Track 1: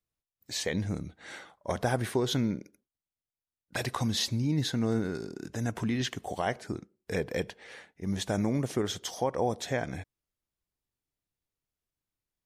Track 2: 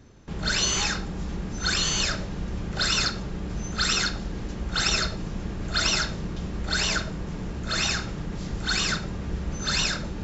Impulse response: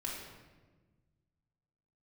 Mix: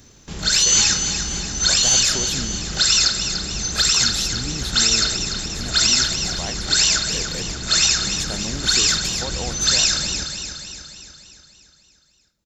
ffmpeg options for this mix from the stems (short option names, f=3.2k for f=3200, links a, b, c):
-filter_complex "[0:a]volume=-4dB[a];[1:a]highshelf=f=3.9k:g=10.5,alimiter=limit=-13dB:level=0:latency=1:release=222,volume=0.5dB,asplit=2[b][c];[c]volume=-8dB,aecho=0:1:293|586|879|1172|1465|1758|2051|2344:1|0.55|0.303|0.166|0.0915|0.0503|0.0277|0.0152[d];[a][b][d]amix=inputs=3:normalize=0,highshelf=f=3.2k:g=10"